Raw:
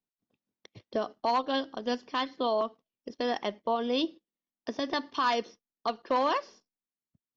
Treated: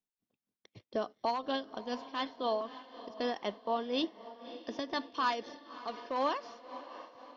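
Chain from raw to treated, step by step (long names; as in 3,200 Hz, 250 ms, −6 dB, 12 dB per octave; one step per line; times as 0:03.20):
feedback delay with all-pass diffusion 606 ms, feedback 53%, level −14 dB
amplitude tremolo 4 Hz, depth 53%
level −3 dB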